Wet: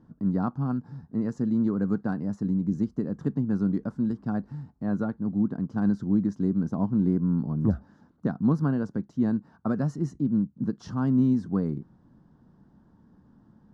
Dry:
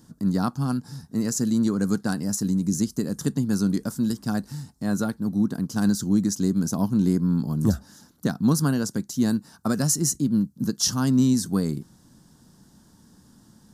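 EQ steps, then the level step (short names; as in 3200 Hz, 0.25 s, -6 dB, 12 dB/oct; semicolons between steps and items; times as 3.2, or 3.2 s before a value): LPF 1300 Hz 12 dB/oct; -2.5 dB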